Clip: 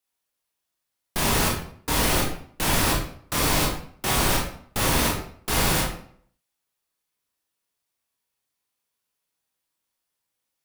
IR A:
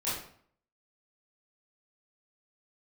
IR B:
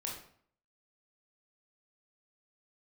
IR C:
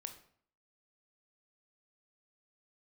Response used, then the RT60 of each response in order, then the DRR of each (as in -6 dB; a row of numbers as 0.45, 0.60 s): B; 0.55, 0.55, 0.55 s; -11.5, -2.5, 6.5 dB